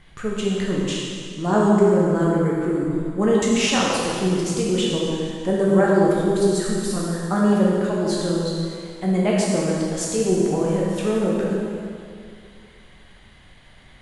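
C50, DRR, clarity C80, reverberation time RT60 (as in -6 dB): -2.0 dB, -5.0 dB, 0.0 dB, 2.3 s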